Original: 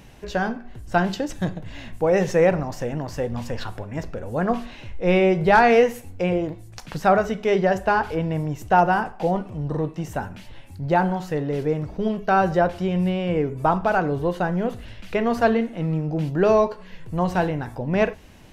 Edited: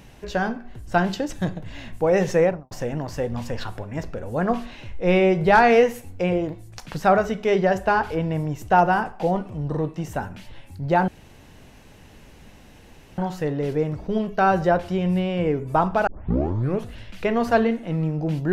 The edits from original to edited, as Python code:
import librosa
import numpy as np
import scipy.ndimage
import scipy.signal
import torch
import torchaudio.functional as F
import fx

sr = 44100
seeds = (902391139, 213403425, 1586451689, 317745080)

y = fx.studio_fade_out(x, sr, start_s=2.35, length_s=0.36)
y = fx.edit(y, sr, fx.insert_room_tone(at_s=11.08, length_s=2.1),
    fx.tape_start(start_s=13.97, length_s=0.81), tone=tone)